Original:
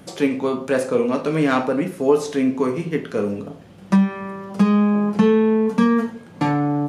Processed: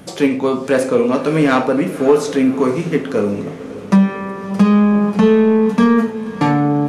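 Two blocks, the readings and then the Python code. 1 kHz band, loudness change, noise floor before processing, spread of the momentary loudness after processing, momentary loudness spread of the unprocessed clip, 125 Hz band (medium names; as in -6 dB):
+4.5 dB, +4.5 dB, -43 dBFS, 8 LU, 8 LU, +4.5 dB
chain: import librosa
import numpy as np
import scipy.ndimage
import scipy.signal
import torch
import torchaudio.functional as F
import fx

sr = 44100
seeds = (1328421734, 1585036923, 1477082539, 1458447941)

p1 = np.clip(x, -10.0 ** (-14.0 / 20.0), 10.0 ** (-14.0 / 20.0))
p2 = x + F.gain(torch.from_numpy(p1), -6.0).numpy()
p3 = fx.echo_diffused(p2, sr, ms=566, feedback_pct=51, wet_db=-14)
y = F.gain(torch.from_numpy(p3), 1.5).numpy()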